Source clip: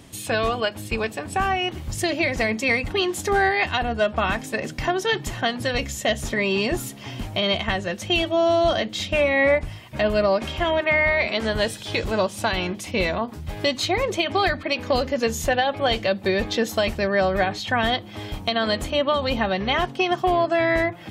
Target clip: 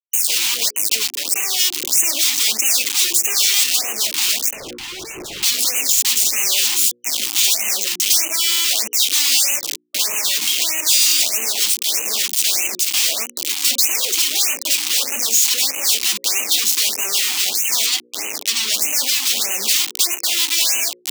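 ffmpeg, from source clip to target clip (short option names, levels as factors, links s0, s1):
-filter_complex "[0:a]acrusher=bits=4:mix=0:aa=0.000001,asettb=1/sr,asplit=3[s0][s1][s2];[s0]atrim=end=17.864[s3];[s1]atrim=start=17.86:end=18.74,asetpts=PTS-STARTPTS,afade=t=in:d=0.004:c=qsin,afade=t=out:st=0.876:d=0.004:c=qsin,highshelf=f=4000:g=-9[s4];[s2]atrim=start=18.736[s5];[s3][s4]acrossfade=d=0.004:c1=hsin:c2=qsin[s6];[s6][s5]acrossfade=d=0.004:c1=qsin:c2=hsin,aeval=exprs='0.473*sin(PI/2*7.94*val(0)/0.473)':c=same,highpass=f=270:w=0.5412,highpass=f=270:w=1.3066,equalizer=f=11000:t=o:w=0.46:g=-5,bandreject=f=60:t=h:w=6,bandreject=f=120:t=h:w=6,bandreject=f=180:t=h:w=6,bandreject=f=240:t=h:w=6,bandreject=f=300:t=h:w=6,bandreject=f=360:t=h:w=6,bandreject=f=420:t=h:w=6,bandreject=f=480:t=h:w=6,bandreject=f=540:t=h:w=6,alimiter=limit=0.112:level=0:latency=1:release=384,aexciter=amount=7.1:drive=5.2:freq=2300,asettb=1/sr,asplit=3[s7][s8][s9];[s7]atrim=end=4.534[s10];[s8]atrim=start=4.53:end=5.43,asetpts=PTS-STARTPTS,afade=t=in:d=0.004:c=qsin,afade=t=out:st=0.896:d=0.004:c=qsin,asplit=2[s11][s12];[s12]highpass=f=720:p=1,volume=56.2,asoftclip=type=tanh:threshold=0.112[s13];[s11][s13]amix=inputs=2:normalize=0,lowpass=f=1700:p=1,volume=0.501[s14];[s9]atrim=start=5.426[s15];[s10][s14]acrossfade=d=0.004:c1=hsin:c2=qsin[s16];[s16][s15]acrossfade=d=0.004:c1=qsin:c2=hsin,afftfilt=real='re*(1-between(b*sr/1024,500*pow(4300/500,0.5+0.5*sin(2*PI*1.6*pts/sr))/1.41,500*pow(4300/500,0.5+0.5*sin(2*PI*1.6*pts/sr))*1.41))':imag='im*(1-between(b*sr/1024,500*pow(4300/500,0.5+0.5*sin(2*PI*1.6*pts/sr))/1.41,500*pow(4300/500,0.5+0.5*sin(2*PI*1.6*pts/sr))*1.41))':win_size=1024:overlap=0.75,volume=0.562"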